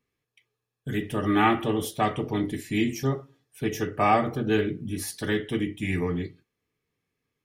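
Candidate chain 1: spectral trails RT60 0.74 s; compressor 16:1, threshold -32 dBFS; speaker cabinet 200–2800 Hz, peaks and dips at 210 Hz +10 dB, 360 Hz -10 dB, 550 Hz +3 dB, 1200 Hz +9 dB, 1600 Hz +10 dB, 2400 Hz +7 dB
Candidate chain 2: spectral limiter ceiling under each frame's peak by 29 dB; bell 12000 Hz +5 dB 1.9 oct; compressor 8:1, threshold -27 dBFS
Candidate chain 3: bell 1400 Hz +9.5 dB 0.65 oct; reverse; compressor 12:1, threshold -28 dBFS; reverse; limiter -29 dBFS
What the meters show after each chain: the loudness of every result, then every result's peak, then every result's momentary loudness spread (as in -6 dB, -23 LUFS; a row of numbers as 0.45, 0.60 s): -34.0, -31.0, -38.5 LUFS; -18.5, -14.5, -29.0 dBFS; 9, 5, 4 LU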